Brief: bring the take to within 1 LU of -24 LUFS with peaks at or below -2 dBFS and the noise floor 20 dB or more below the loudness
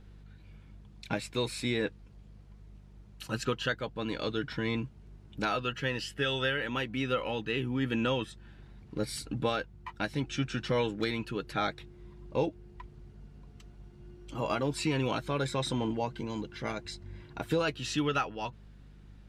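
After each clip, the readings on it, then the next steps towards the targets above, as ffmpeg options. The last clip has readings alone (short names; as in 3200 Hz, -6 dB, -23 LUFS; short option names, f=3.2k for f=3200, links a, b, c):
hum 50 Hz; harmonics up to 200 Hz; hum level -50 dBFS; loudness -33.0 LUFS; peak -16.5 dBFS; loudness target -24.0 LUFS
-> -af "bandreject=f=50:t=h:w=4,bandreject=f=100:t=h:w=4,bandreject=f=150:t=h:w=4,bandreject=f=200:t=h:w=4"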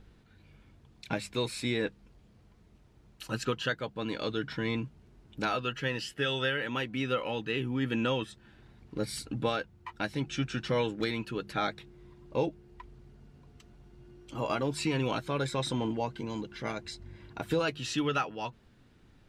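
hum none; loudness -33.0 LUFS; peak -17.0 dBFS; loudness target -24.0 LUFS
-> -af "volume=9dB"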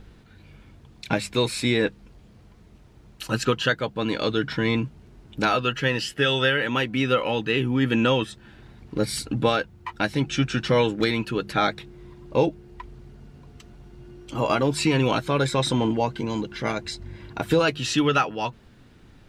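loudness -24.0 LUFS; peak -8.0 dBFS; noise floor -52 dBFS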